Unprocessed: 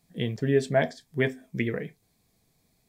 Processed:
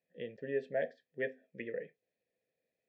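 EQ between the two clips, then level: Bessel low-pass 4.3 kHz; dynamic bell 180 Hz, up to +6 dB, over -41 dBFS, Q 1.1; vowel filter e; -1.0 dB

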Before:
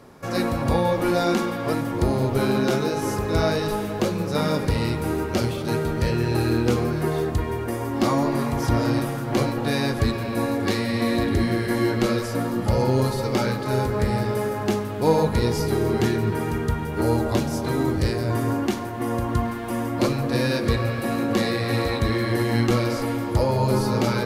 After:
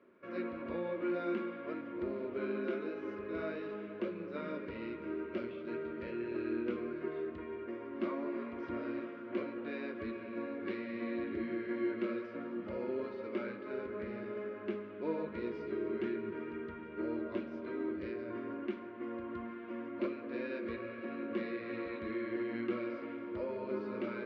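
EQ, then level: cabinet simulation 260–2100 Hz, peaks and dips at 270 Hz -9 dB, 460 Hz -10 dB, 1.2 kHz -5 dB, 1.8 kHz -8 dB; static phaser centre 330 Hz, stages 4; -6.0 dB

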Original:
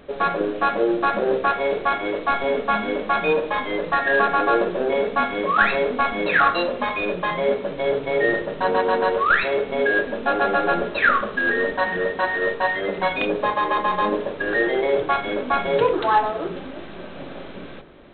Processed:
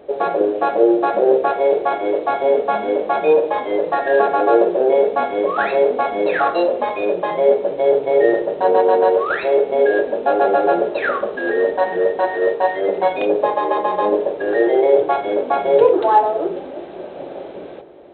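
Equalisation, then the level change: high-pass 66 Hz; high-order bell 530 Hz +12.5 dB; -5.0 dB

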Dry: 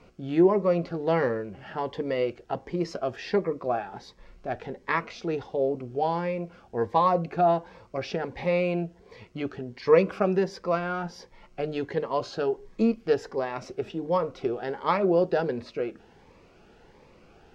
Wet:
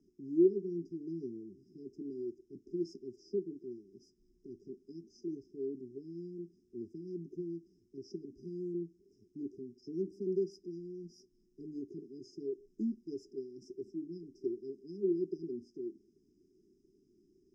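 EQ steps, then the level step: brick-wall FIR band-stop 410–4900 Hz; three-band isolator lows -18 dB, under 260 Hz, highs -13 dB, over 3.8 kHz; -4.0 dB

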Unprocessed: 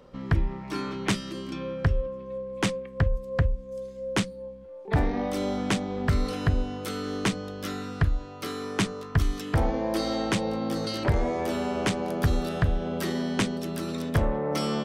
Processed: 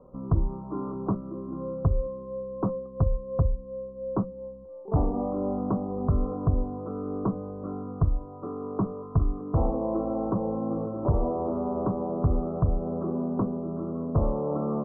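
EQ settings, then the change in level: steep low-pass 1.2 kHz 72 dB/octave; band-stop 850 Hz, Q 12; 0.0 dB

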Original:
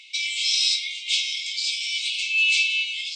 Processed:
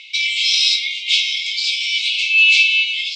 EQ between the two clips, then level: low-pass 4.4 kHz 12 dB/octave; +9.0 dB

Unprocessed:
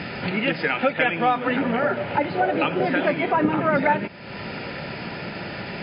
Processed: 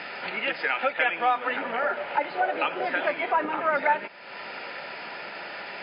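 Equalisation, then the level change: high-pass 810 Hz 12 dB/octave; tilt EQ -2 dB/octave; 0.0 dB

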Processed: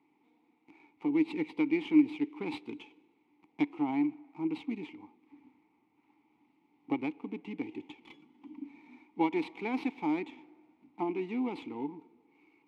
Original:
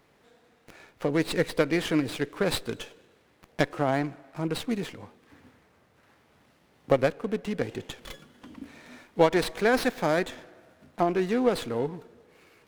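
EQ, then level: high-pass 62 Hz; dynamic bell 3 kHz, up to +5 dB, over -50 dBFS, Q 1.9; vowel filter u; +4.0 dB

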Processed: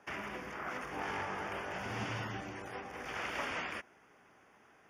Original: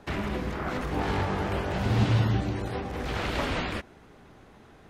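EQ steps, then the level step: boxcar filter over 11 samples; differentiator; bass shelf 310 Hz +5.5 dB; +10.5 dB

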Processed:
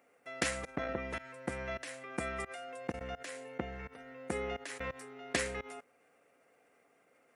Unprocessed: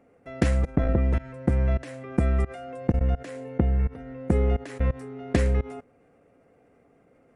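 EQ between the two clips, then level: differentiator; treble shelf 3.7 kHz -12 dB; +14.0 dB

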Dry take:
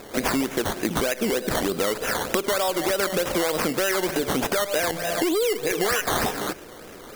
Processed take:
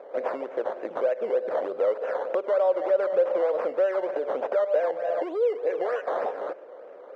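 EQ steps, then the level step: resonant high-pass 540 Hz, resonance Q 5.1; low-pass 1.4 kHz 12 dB/octave; -8.0 dB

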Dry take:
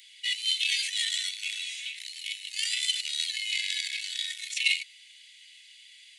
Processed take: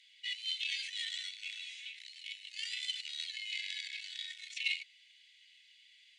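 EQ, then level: distance through air 100 m; -7.5 dB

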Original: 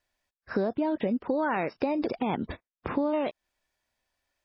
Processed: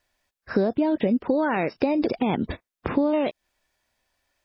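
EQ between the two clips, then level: dynamic bell 1.1 kHz, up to -5 dB, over -43 dBFS, Q 0.95; +6.5 dB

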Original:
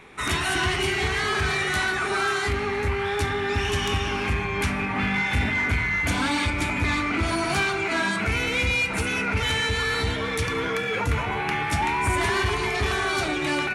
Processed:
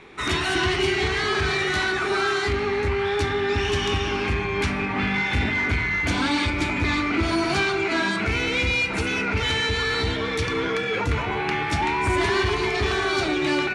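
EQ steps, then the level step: low-pass 6.9 kHz 12 dB/octave; peaking EQ 350 Hz +6 dB 0.56 oct; peaking EQ 4.3 kHz +3.5 dB 0.79 oct; 0.0 dB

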